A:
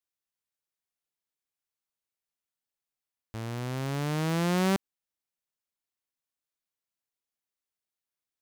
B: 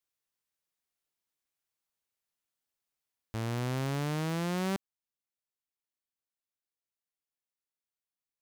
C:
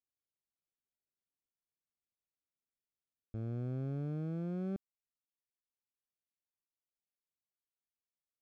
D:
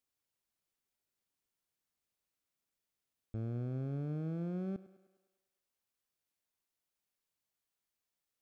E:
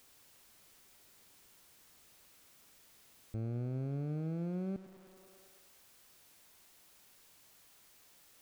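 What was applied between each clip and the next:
vocal rider 0.5 s; gain -3 dB
running mean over 46 samples; gain -4 dB
limiter -39 dBFS, peak gain reduction 7.5 dB; thinning echo 0.102 s, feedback 61%, high-pass 220 Hz, level -16 dB; gain +6 dB
zero-crossing step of -54.5 dBFS

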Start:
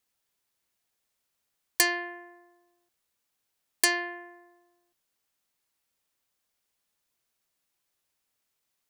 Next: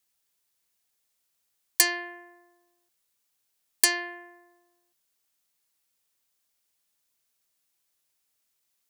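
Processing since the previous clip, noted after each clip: high shelf 3300 Hz +7.5 dB; gain -2.5 dB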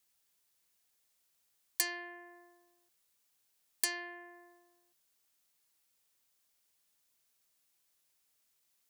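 compressor 1.5:1, threshold -50 dBFS, peak gain reduction 12.5 dB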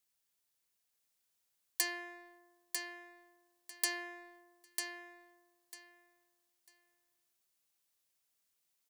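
sample leveller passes 1; on a send: feedback echo 0.947 s, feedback 20%, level -5 dB; on the sum: gain -4 dB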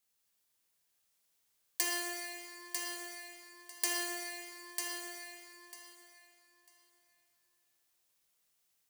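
reverb RT60 2.6 s, pre-delay 4 ms, DRR -2.5 dB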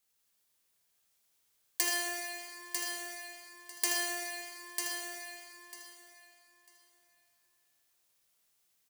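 echo 79 ms -8.5 dB; gain +2 dB

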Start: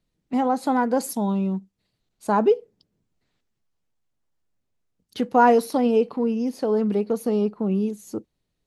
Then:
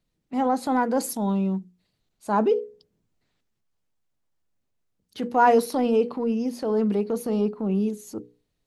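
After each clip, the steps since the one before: notches 60/120/180/240/300/360/420/480 Hz; transient shaper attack -5 dB, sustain +1 dB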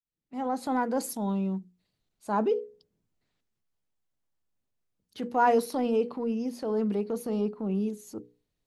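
opening faded in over 0.65 s; gain -5 dB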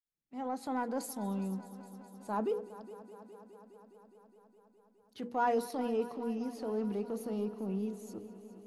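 in parallel at -10 dB: soft clip -22.5 dBFS, distortion -13 dB; on the sum: multi-head echo 0.207 s, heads first and second, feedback 72%, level -19 dB; gain -9 dB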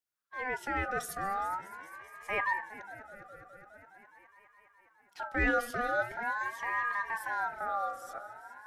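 ring modulator with a swept carrier 1200 Hz, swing 20%, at 0.44 Hz; gain +4.5 dB

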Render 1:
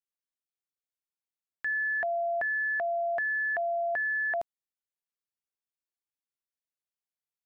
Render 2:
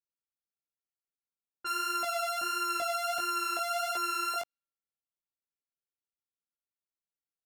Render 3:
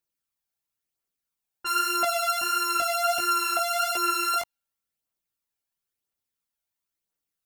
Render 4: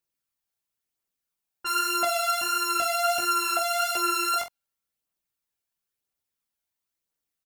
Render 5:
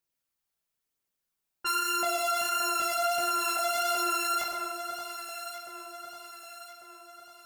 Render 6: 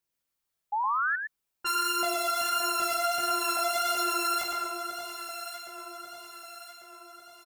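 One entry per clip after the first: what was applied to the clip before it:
sample sorter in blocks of 32 samples; chorus 1.5 Hz, delay 16.5 ms, depth 4.8 ms; low-pass opened by the level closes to 620 Hz, open at -33.5 dBFS
phaser 0.98 Hz, delay 1.4 ms, feedback 38%; high shelf 9800 Hz +5 dB; gain +6 dB
doubler 46 ms -10 dB
echo with dull and thin repeats by turns 0.573 s, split 1400 Hz, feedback 68%, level -10 dB; reverb RT60 0.85 s, pre-delay 70 ms, DRR 5.5 dB; limiter -20.5 dBFS, peak gain reduction 7 dB
painted sound rise, 0.72–1.16, 810–1800 Hz -28 dBFS; echo 0.113 s -6 dB

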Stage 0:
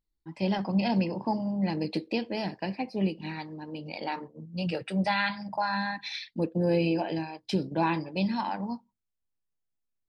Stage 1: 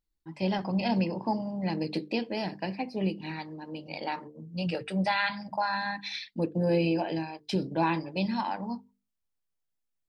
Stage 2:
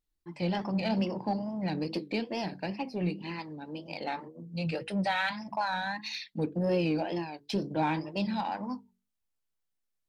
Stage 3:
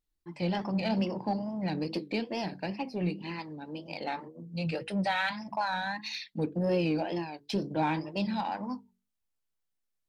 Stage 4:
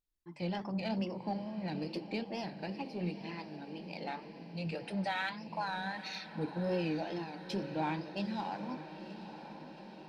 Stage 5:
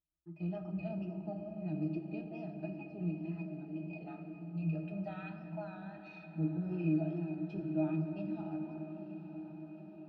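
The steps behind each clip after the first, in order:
notches 50/100/150/200/250/300/350/400/450 Hz
wow and flutter 120 cents; in parallel at -7.5 dB: soft clip -31 dBFS, distortion -8 dB; on the sum: gain -3.5 dB
nothing audible
diffused feedback echo 0.921 s, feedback 64%, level -11.5 dB; gain -6 dB
octave resonator D#, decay 0.12 s; on a send at -6.5 dB: reverb RT60 3.3 s, pre-delay 6 ms; on the sum: gain +5.5 dB

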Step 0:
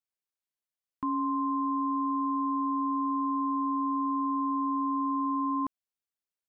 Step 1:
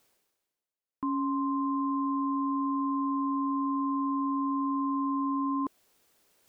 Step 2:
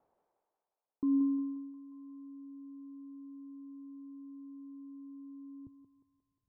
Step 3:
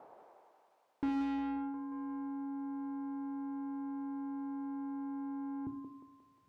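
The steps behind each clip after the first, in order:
bell 420 Hz +8 dB 1.8 oct; reverse; upward compressor, threshold -40 dBFS; reverse; gain -4.5 dB
low-pass sweep 830 Hz -> 110 Hz, 0.73–1.53; thinning echo 0.178 s, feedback 67%, high-pass 490 Hz, level -3.5 dB; gain -3.5 dB
overdrive pedal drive 35 dB, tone 1000 Hz, clips at -23 dBFS; reverb, pre-delay 17 ms, DRR 7.5 dB; gain -3 dB

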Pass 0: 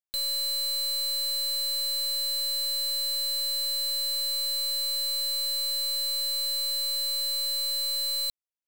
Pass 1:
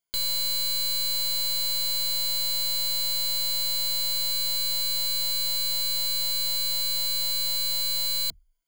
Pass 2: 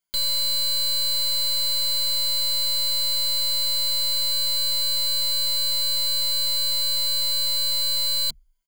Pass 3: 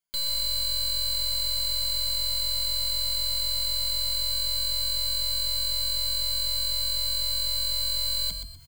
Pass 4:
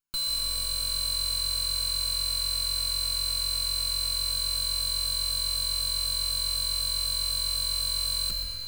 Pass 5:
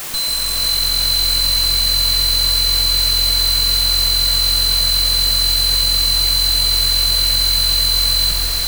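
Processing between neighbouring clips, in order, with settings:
ripple EQ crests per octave 1.8, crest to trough 15 dB; gain +5.5 dB
comb 5.2 ms, depth 74%
reverse; upward compressor, threshold -31 dBFS; reverse; frequency-shifting echo 0.124 s, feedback 31%, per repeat +44 Hz, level -8 dB; gain -5 dB
minimum comb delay 0.75 ms; digital reverb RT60 4.8 s, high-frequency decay 0.85×, pre-delay 0.11 s, DRR 4 dB
requantised 6-bit, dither triangular; diffused feedback echo 0.478 s, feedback 47%, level -4 dB; gain +9 dB

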